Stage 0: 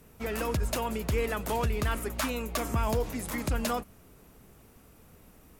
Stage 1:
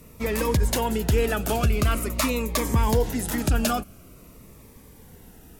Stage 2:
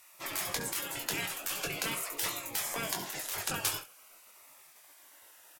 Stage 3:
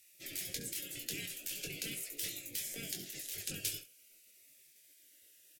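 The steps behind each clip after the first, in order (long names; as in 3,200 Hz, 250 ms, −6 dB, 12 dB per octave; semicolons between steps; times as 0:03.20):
phaser whose notches keep moving one way falling 0.46 Hz; level +8 dB
gate on every frequency bin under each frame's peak −20 dB weak; ambience of single reflections 21 ms −6.5 dB, 68 ms −14 dB; level −1.5 dB
Butterworth band-reject 1,000 Hz, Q 0.53; level −5 dB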